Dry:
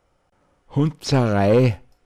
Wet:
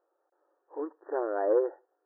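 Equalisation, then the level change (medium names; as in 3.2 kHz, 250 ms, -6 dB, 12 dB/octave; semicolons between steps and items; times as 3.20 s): brick-wall FIR band-pass 310–1900 Hz; distance through air 400 m; tilt EQ -2 dB/octave; -8.5 dB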